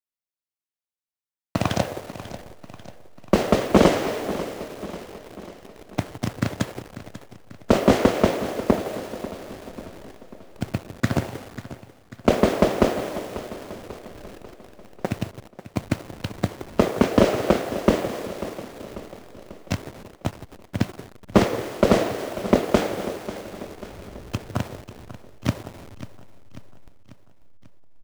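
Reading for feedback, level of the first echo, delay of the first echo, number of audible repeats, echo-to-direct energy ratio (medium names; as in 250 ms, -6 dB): 54%, -14.5 dB, 542 ms, 4, -13.0 dB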